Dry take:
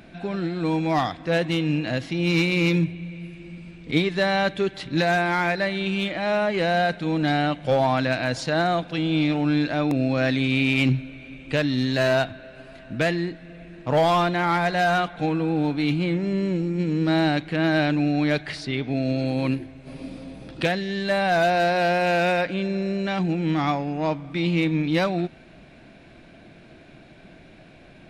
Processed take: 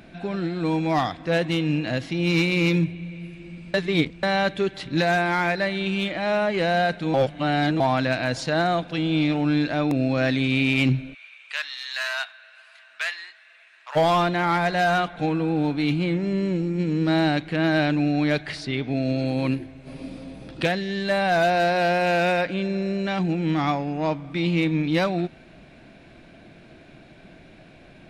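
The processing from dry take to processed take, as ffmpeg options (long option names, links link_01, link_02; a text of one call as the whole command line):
ffmpeg -i in.wav -filter_complex "[0:a]asplit=3[link_01][link_02][link_03];[link_01]afade=type=out:start_time=11.13:duration=0.02[link_04];[link_02]highpass=frequency=1100:width=0.5412,highpass=frequency=1100:width=1.3066,afade=type=in:start_time=11.13:duration=0.02,afade=type=out:start_time=13.95:duration=0.02[link_05];[link_03]afade=type=in:start_time=13.95:duration=0.02[link_06];[link_04][link_05][link_06]amix=inputs=3:normalize=0,asplit=5[link_07][link_08][link_09][link_10][link_11];[link_07]atrim=end=3.742[link_12];[link_08]atrim=start=3.738:end=4.232,asetpts=PTS-STARTPTS,areverse[link_13];[link_09]atrim=start=4.228:end=7.142[link_14];[link_10]atrim=start=7.138:end=7.802,asetpts=PTS-STARTPTS,areverse[link_15];[link_11]atrim=start=7.798[link_16];[link_12][link_13]acrossfade=duration=0.004:curve1=hsin:curve2=hsin[link_17];[link_17][link_14]acrossfade=duration=0.004:curve1=hsin:curve2=hsin[link_18];[link_18][link_15]acrossfade=duration=0.004:curve1=hsin:curve2=hsin[link_19];[link_19][link_16]acrossfade=duration=0.004:curve1=hsin:curve2=hsin" out.wav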